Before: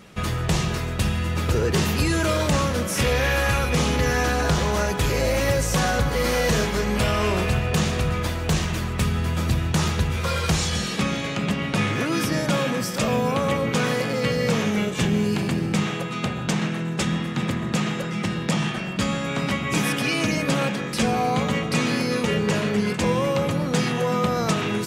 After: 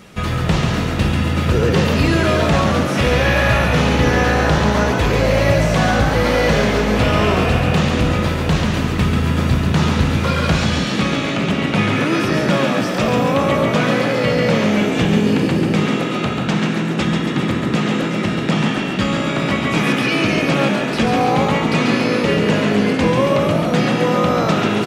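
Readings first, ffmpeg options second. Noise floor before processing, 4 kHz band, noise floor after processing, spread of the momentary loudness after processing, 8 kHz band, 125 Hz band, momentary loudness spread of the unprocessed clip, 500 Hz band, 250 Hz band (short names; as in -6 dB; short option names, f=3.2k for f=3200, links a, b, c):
-29 dBFS, +5.0 dB, -21 dBFS, 4 LU, -1.5 dB, +6.0 dB, 4 LU, +7.0 dB, +7.5 dB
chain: -filter_complex "[0:a]acrossover=split=4500[a][b];[b]acompressor=threshold=-46dB:ratio=4:attack=1:release=60[c];[a][c]amix=inputs=2:normalize=0,asplit=9[d][e][f][g][h][i][j][k][l];[e]adelay=139,afreqshift=55,volume=-5dB[m];[f]adelay=278,afreqshift=110,volume=-9.7dB[n];[g]adelay=417,afreqshift=165,volume=-14.5dB[o];[h]adelay=556,afreqshift=220,volume=-19.2dB[p];[i]adelay=695,afreqshift=275,volume=-23.9dB[q];[j]adelay=834,afreqshift=330,volume=-28.7dB[r];[k]adelay=973,afreqshift=385,volume=-33.4dB[s];[l]adelay=1112,afreqshift=440,volume=-38.1dB[t];[d][m][n][o][p][q][r][s][t]amix=inputs=9:normalize=0,volume=5dB"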